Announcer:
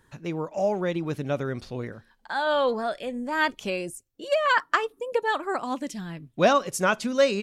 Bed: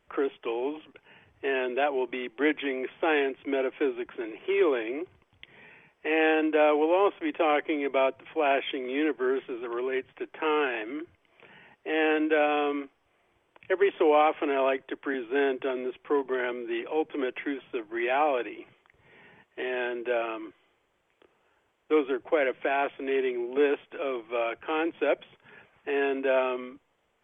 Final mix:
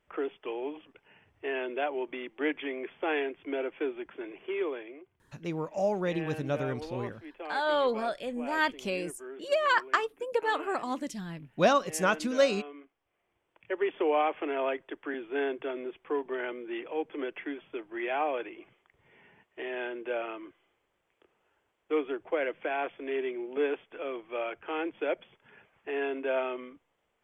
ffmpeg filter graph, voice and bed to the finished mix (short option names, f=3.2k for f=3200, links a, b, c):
-filter_complex "[0:a]adelay=5200,volume=-3.5dB[a];[1:a]volume=6.5dB,afade=t=out:st=4.33:d=0.69:silence=0.266073,afade=t=in:st=12.77:d=1.21:silence=0.266073[b];[a][b]amix=inputs=2:normalize=0"